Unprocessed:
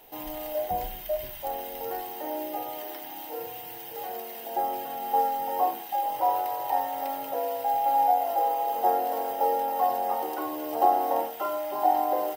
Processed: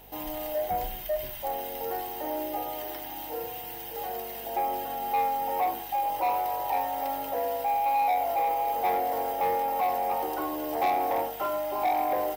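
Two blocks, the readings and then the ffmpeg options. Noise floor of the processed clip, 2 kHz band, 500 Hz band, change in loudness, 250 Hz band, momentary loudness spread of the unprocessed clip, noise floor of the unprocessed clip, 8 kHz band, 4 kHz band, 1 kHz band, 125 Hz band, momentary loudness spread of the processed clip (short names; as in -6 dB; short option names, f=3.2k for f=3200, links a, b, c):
-39 dBFS, +4.5 dB, -0.5 dB, -1.0 dB, 0.0 dB, 12 LU, -40 dBFS, +0.5 dB, +1.0 dB, -1.5 dB, n/a, 9 LU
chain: -af "aeval=exprs='val(0)+0.00141*(sin(2*PI*50*n/s)+sin(2*PI*2*50*n/s)/2+sin(2*PI*3*50*n/s)/3+sin(2*PI*4*50*n/s)/4+sin(2*PI*5*50*n/s)/5)':c=same,acontrast=82,asoftclip=type=tanh:threshold=-15.5dB,volume=-5.5dB"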